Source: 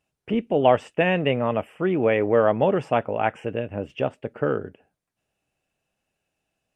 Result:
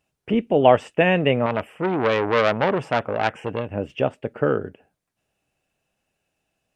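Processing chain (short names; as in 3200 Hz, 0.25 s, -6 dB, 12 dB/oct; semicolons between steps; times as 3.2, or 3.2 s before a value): 1.46–3.71 core saturation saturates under 1600 Hz; gain +3 dB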